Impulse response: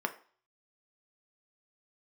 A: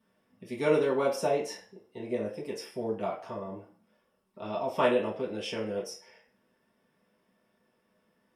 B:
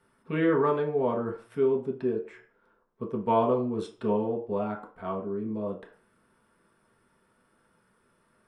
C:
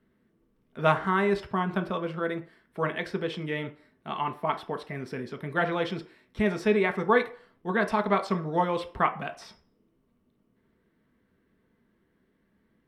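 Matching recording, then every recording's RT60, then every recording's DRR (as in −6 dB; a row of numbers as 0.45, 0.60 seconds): C; 0.45, 0.45, 0.45 seconds; −7.5, −1.5, 5.5 decibels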